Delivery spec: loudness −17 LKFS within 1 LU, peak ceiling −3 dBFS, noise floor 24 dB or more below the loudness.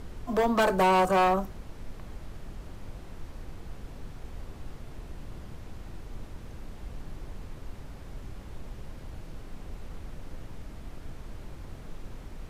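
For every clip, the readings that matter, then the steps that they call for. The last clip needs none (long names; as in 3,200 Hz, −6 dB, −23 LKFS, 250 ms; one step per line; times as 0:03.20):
share of clipped samples 1.0%; peaks flattened at −19.0 dBFS; background noise floor −45 dBFS; target noise floor −49 dBFS; integrated loudness −24.5 LKFS; sample peak −19.0 dBFS; target loudness −17.0 LKFS
→ clipped peaks rebuilt −19 dBFS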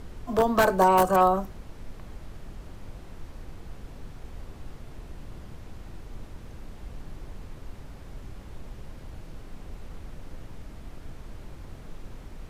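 share of clipped samples 0.0%; background noise floor −45 dBFS; target noise floor −46 dBFS
→ noise reduction from a noise print 6 dB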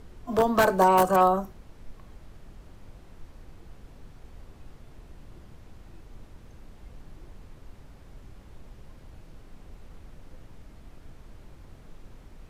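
background noise floor −51 dBFS; integrated loudness −22.0 LKFS; sample peak −10.0 dBFS; target loudness −17.0 LKFS
→ level +5 dB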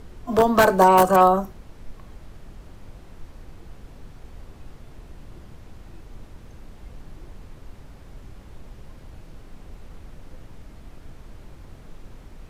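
integrated loudness −17.0 LKFS; sample peak −5.0 dBFS; background noise floor −46 dBFS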